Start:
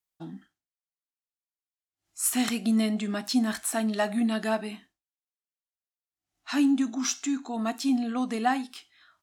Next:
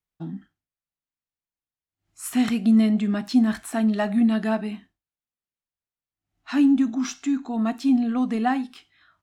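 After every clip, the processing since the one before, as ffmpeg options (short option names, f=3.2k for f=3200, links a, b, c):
-af "bass=f=250:g=10,treble=f=4k:g=-9,volume=1dB"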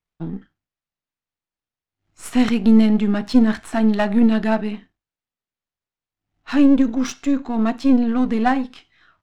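-af "aeval=exprs='if(lt(val(0),0),0.447*val(0),val(0))':c=same,adynamicsmooth=sensitivity=5.5:basefreq=5.8k,volume=7dB"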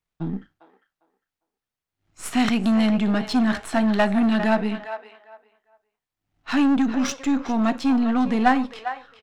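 -filter_complex "[0:a]acrossover=split=540[a][b];[a]asoftclip=type=tanh:threshold=-18.5dB[c];[b]asplit=2[d][e];[e]adelay=402,lowpass=f=2.3k:p=1,volume=-8dB,asplit=2[f][g];[g]adelay=402,lowpass=f=2.3k:p=1,volume=0.21,asplit=2[h][i];[i]adelay=402,lowpass=f=2.3k:p=1,volume=0.21[j];[d][f][h][j]amix=inputs=4:normalize=0[k];[c][k]amix=inputs=2:normalize=0,volume=1.5dB"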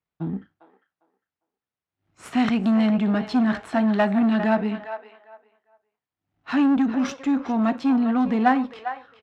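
-af "highpass=78,aemphasis=mode=reproduction:type=75kf"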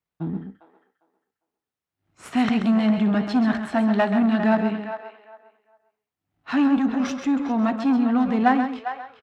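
-af "aecho=1:1:133:0.376"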